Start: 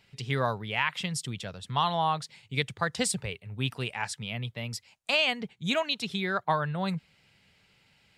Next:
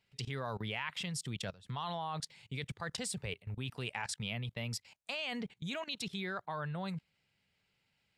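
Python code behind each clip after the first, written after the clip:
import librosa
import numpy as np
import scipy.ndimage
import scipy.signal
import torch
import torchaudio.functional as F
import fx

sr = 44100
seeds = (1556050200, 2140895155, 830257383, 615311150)

y = fx.level_steps(x, sr, step_db=20)
y = y * 10.0 ** (1.5 / 20.0)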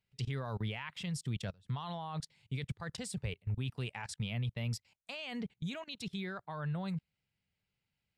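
y = fx.low_shelf(x, sr, hz=190.0, db=10.0)
y = fx.upward_expand(y, sr, threshold_db=-50.0, expansion=1.5)
y = y * 10.0 ** (-1.0 / 20.0)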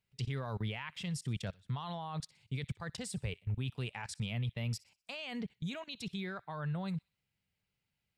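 y = fx.echo_wet_highpass(x, sr, ms=62, feedback_pct=41, hz=1800.0, wet_db=-21)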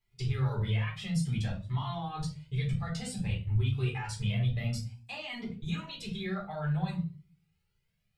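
y = fx.room_shoebox(x, sr, seeds[0], volume_m3=180.0, walls='furnished', distance_m=4.0)
y = fx.comb_cascade(y, sr, direction='rising', hz=0.56)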